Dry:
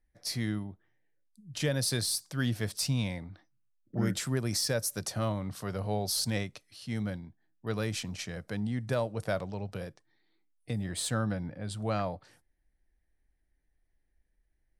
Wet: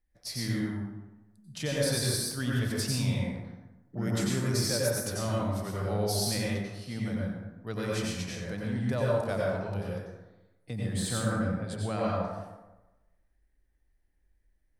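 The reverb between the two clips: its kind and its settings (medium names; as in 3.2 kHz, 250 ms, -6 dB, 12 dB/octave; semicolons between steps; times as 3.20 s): plate-style reverb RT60 1.1 s, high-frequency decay 0.5×, pre-delay 80 ms, DRR -4.5 dB; trim -3.5 dB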